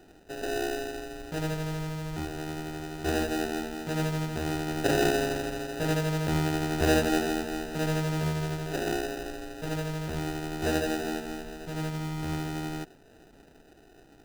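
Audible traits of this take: aliases and images of a low sample rate 1.1 kHz, jitter 0%; Nellymoser

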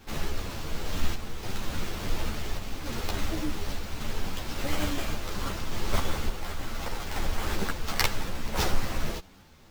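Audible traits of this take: aliases and images of a low sample rate 10 kHz, jitter 20%; random-step tremolo; a shimmering, thickened sound

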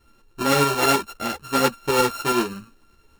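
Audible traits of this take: a buzz of ramps at a fixed pitch in blocks of 32 samples; tremolo saw up 9.5 Hz, depth 50%; a shimmering, thickened sound

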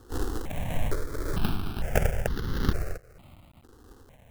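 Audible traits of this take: aliases and images of a low sample rate 1 kHz, jitter 20%; tremolo triangle 1.6 Hz, depth 55%; a quantiser's noise floor 10-bit, dither none; notches that jump at a steady rate 2.2 Hz 620–2400 Hz

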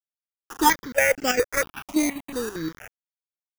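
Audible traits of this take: aliases and images of a low sample rate 4.2 kHz, jitter 0%; chopped level 5.1 Hz, depth 65%, duty 70%; a quantiser's noise floor 6-bit, dither none; notches that jump at a steady rate 4.3 Hz 450–3600 Hz

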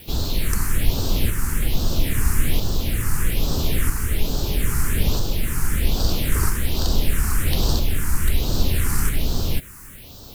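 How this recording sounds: tremolo saw up 0.77 Hz, depth 35%; a quantiser's noise floor 8-bit, dither triangular; phasing stages 4, 1.2 Hz, lowest notch 570–2100 Hz

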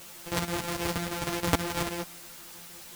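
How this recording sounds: a buzz of ramps at a fixed pitch in blocks of 256 samples; chopped level 6.3 Hz, depth 65%, duty 75%; a quantiser's noise floor 8-bit, dither triangular; a shimmering, thickened sound

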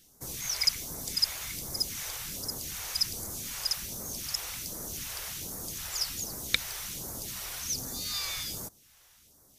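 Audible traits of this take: phasing stages 2, 1.3 Hz, lowest notch 210–2700 Hz

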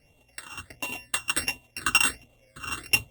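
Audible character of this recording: a buzz of ramps at a fixed pitch in blocks of 16 samples; phasing stages 8, 1.4 Hz, lowest notch 620–1600 Hz; Opus

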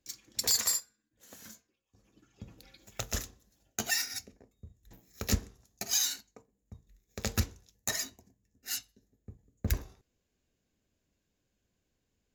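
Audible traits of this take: noise floor -81 dBFS; spectral tilt -2.0 dB/octave

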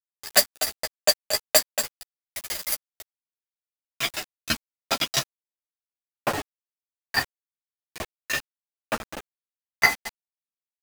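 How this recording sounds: tremolo saw down 6 Hz, depth 95%; a quantiser's noise floor 6-bit, dither none; a shimmering, thickened sound

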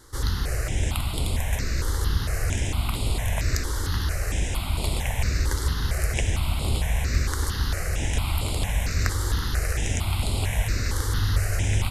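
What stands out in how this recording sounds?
notches that jump at a steady rate 4.4 Hz 680–6000 Hz

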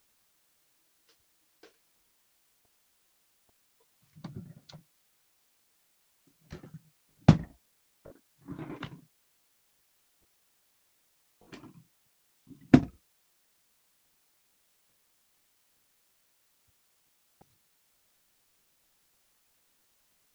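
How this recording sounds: tremolo saw down 9.2 Hz, depth 80%; a quantiser's noise floor 12-bit, dither triangular

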